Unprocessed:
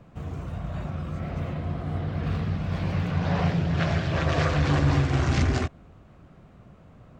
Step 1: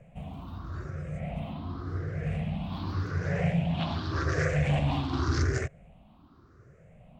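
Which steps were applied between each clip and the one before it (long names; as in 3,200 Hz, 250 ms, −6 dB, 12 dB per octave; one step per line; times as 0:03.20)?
rippled gain that drifts along the octave scale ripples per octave 0.51, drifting +0.87 Hz, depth 17 dB
level −7.5 dB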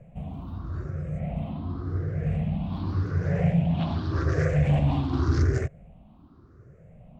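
tilt shelving filter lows +5 dB, about 840 Hz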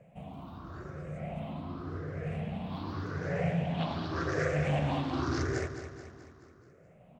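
high-pass filter 420 Hz 6 dB per octave
on a send: repeating echo 215 ms, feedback 53%, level −10 dB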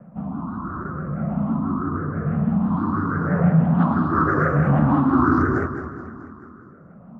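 drawn EQ curve 130 Hz 0 dB, 220 Hz +13 dB, 450 Hz −3 dB, 680 Hz −3 dB, 1,300 Hz +12 dB, 2,300 Hz −18 dB, 3,700 Hz −23 dB
pitch vibrato 6.1 Hz 86 cents
level +9 dB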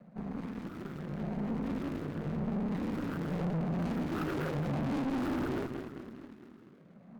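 running median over 41 samples
high-pass filter 180 Hz 12 dB per octave
tube saturation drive 27 dB, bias 0.75
level −3 dB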